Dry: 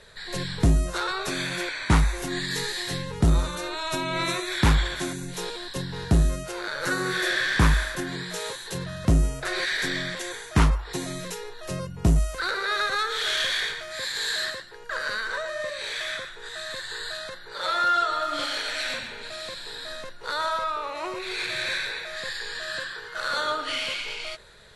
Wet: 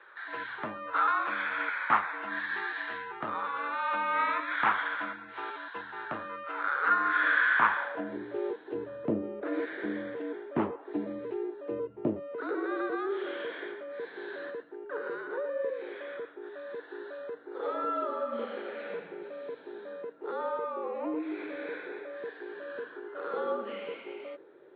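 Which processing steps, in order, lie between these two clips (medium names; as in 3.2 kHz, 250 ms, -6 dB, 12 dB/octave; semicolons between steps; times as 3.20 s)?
band-pass sweep 1.3 kHz -> 450 Hz, 7.67–8.18 s; mistuned SSB -61 Hz 240–3300 Hz; trim +5.5 dB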